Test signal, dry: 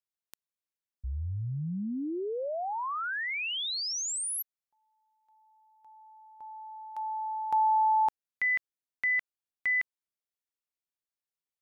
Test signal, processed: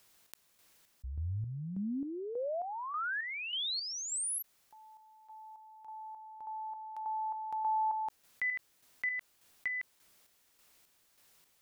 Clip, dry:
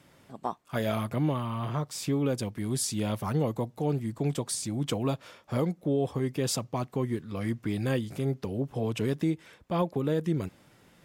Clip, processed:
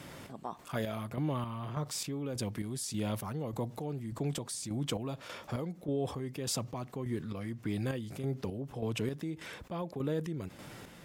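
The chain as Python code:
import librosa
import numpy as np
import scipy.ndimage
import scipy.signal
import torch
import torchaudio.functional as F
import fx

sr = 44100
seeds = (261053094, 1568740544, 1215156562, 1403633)

y = fx.chopper(x, sr, hz=1.7, depth_pct=65, duty_pct=45)
y = fx.env_flatten(y, sr, amount_pct=50)
y = y * librosa.db_to_amplitude(-6.5)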